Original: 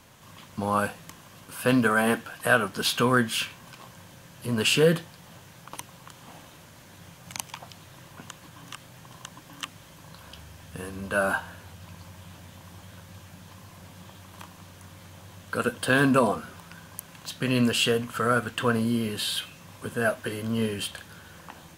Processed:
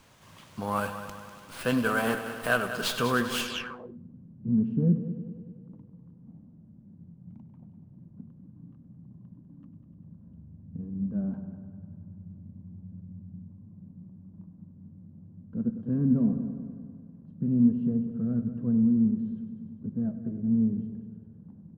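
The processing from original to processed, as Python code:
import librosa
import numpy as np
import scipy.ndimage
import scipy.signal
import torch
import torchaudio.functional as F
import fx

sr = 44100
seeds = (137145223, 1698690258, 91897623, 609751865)

y = fx.echo_heads(x, sr, ms=99, heads='first and second', feedback_pct=60, wet_db=-13.5)
y = fx.filter_sweep_lowpass(y, sr, from_hz=14000.0, to_hz=210.0, start_s=3.34, end_s=3.98, q=3.9)
y = fx.running_max(y, sr, window=3)
y = y * librosa.db_to_amplitude(-4.5)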